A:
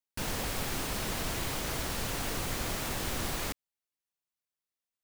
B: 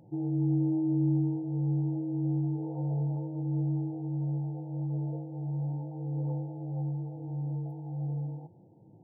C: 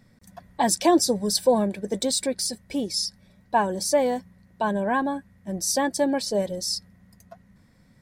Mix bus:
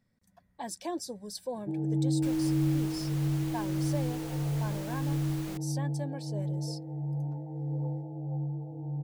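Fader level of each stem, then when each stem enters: −11.0, −0.5, −17.0 decibels; 2.05, 1.55, 0.00 seconds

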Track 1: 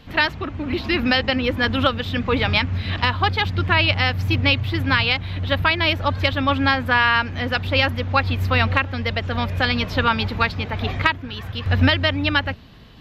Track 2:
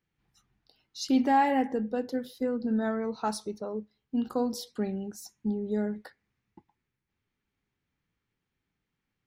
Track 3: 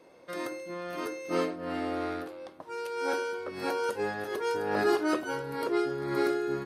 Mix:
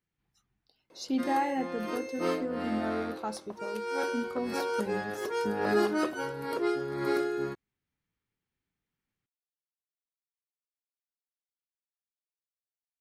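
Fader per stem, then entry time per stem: muted, −5.5 dB, −1.0 dB; muted, 0.00 s, 0.90 s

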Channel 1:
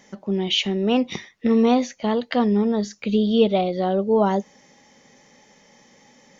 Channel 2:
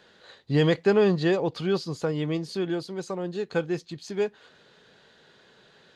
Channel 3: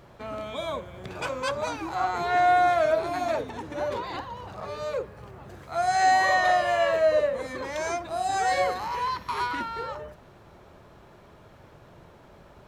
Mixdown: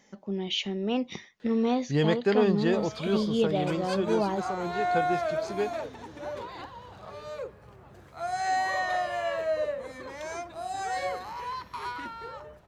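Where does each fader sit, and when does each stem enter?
−8.5, −3.5, −7.0 decibels; 0.00, 1.40, 2.45 seconds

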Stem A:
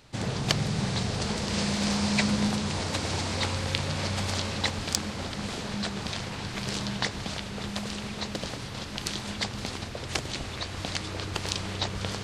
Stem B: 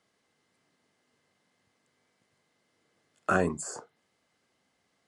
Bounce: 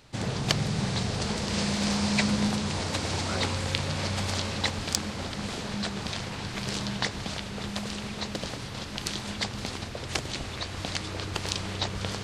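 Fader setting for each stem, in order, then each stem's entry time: 0.0, −11.0 decibels; 0.00, 0.00 seconds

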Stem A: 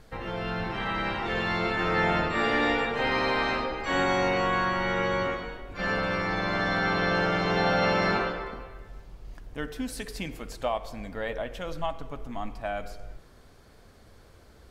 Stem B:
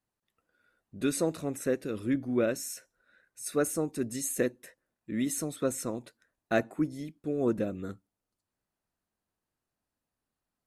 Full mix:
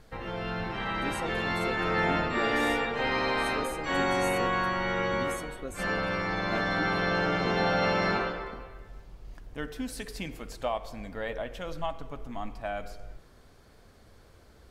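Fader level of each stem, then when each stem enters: −2.0, −9.5 decibels; 0.00, 0.00 seconds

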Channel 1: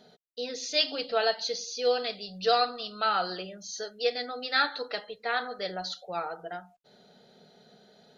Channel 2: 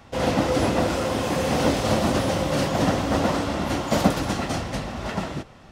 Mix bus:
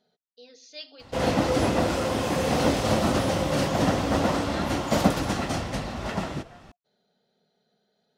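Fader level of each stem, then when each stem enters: −15.0, −1.5 decibels; 0.00, 1.00 seconds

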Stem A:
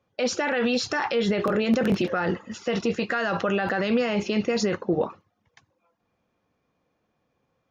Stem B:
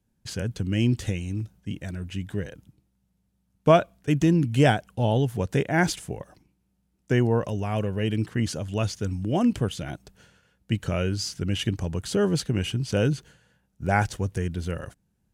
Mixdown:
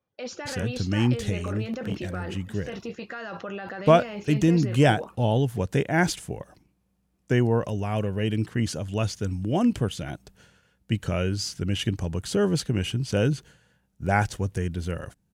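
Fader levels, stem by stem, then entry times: −10.5, 0.0 decibels; 0.00, 0.20 seconds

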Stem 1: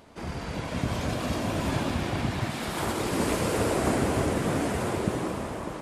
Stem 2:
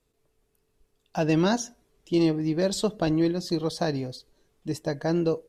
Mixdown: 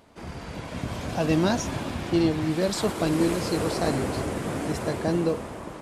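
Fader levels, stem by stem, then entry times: −3.0, −0.5 decibels; 0.00, 0.00 seconds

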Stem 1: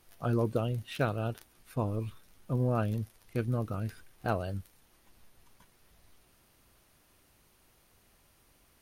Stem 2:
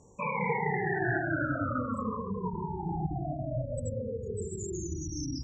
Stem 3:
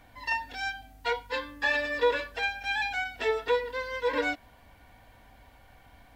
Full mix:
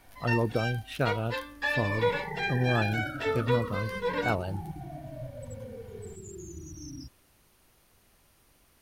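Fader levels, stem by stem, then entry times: +1.5, −7.0, −2.5 decibels; 0.00, 1.65, 0.00 seconds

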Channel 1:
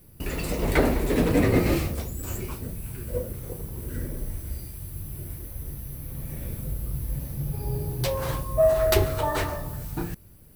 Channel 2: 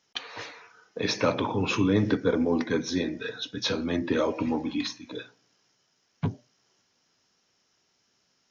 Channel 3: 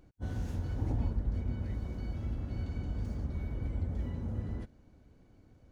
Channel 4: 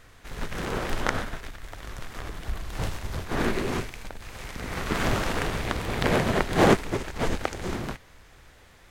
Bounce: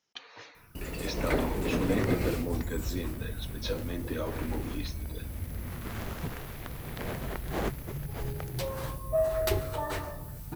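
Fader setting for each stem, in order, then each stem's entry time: −7.5, −9.5, −4.0, −14.5 decibels; 0.55, 0.00, 1.60, 0.95 seconds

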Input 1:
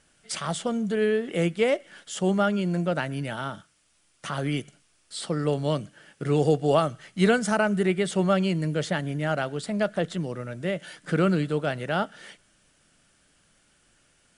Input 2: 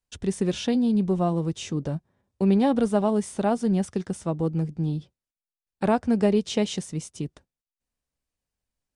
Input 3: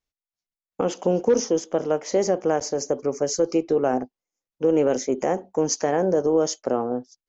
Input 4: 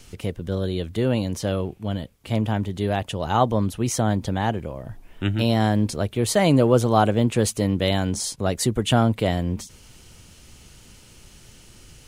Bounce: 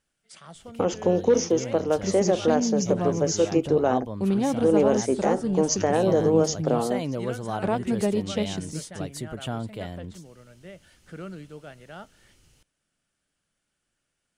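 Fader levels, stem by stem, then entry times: −16.0, −3.5, −0.5, −13.0 decibels; 0.00, 1.80, 0.00, 0.55 seconds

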